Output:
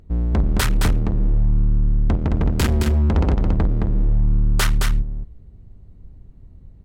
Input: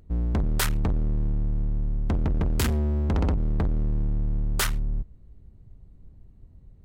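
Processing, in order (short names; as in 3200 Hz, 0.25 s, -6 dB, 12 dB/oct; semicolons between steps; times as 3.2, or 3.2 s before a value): high shelf 8800 Hz -7.5 dB; on a send: echo 0.217 s -5 dB; on the sum: gain +5 dB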